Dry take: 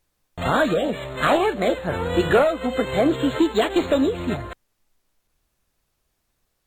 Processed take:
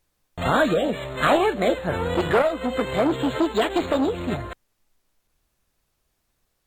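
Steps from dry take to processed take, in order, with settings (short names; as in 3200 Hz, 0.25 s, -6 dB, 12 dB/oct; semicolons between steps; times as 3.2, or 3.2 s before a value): 2.14–4.33 core saturation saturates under 780 Hz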